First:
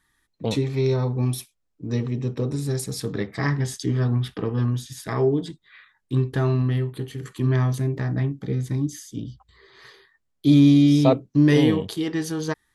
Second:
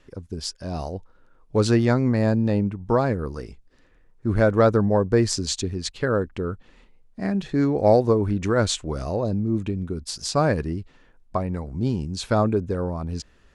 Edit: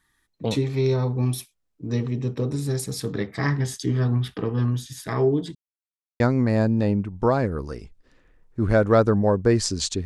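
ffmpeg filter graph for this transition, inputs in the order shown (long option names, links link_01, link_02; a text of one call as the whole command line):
ffmpeg -i cue0.wav -i cue1.wav -filter_complex "[0:a]apad=whole_dur=10.05,atrim=end=10.05,asplit=2[link_01][link_02];[link_01]atrim=end=5.55,asetpts=PTS-STARTPTS,afade=type=out:start_time=5.546:duration=0.004:curve=hsin[link_03];[link_02]atrim=start=5.55:end=6.2,asetpts=PTS-STARTPTS,volume=0[link_04];[1:a]atrim=start=1.87:end=5.72,asetpts=PTS-STARTPTS,afade=type=in:duration=0.004:curve=hsin[link_05];[link_03][link_04][link_05]concat=n=3:v=0:a=1" out.wav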